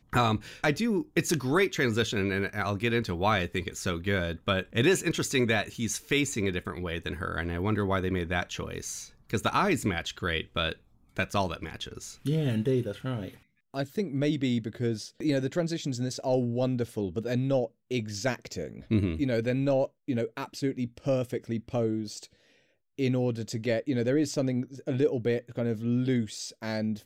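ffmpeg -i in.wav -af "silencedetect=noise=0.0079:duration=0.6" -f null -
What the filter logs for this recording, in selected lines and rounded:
silence_start: 22.25
silence_end: 22.99 | silence_duration: 0.73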